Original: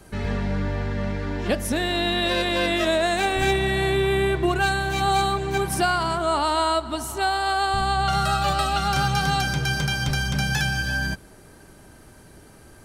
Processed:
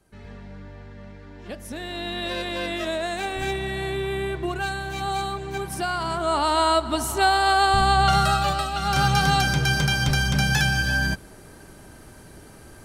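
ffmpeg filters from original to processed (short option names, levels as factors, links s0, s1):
-af "volume=3.98,afade=t=in:st=1.34:d=0.95:silence=0.334965,afade=t=in:st=5.82:d=1.22:silence=0.316228,afade=t=out:st=8.08:d=0.64:silence=0.334965,afade=t=in:st=8.72:d=0.34:silence=0.398107"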